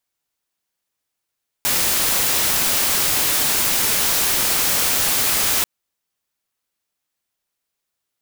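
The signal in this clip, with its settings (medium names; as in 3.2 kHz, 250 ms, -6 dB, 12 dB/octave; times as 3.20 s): noise white, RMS -18.5 dBFS 3.99 s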